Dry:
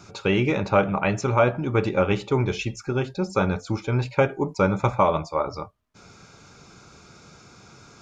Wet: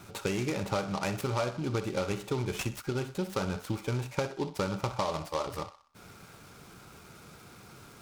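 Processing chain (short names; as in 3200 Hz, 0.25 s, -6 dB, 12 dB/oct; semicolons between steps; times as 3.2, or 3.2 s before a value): compressor 5:1, threshold -26 dBFS, peak gain reduction 11.5 dB; on a send: narrowing echo 62 ms, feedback 48%, band-pass 1300 Hz, level -10.5 dB; on the sum: noise-modulated delay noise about 3400 Hz, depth 0.045 ms; gain -2.5 dB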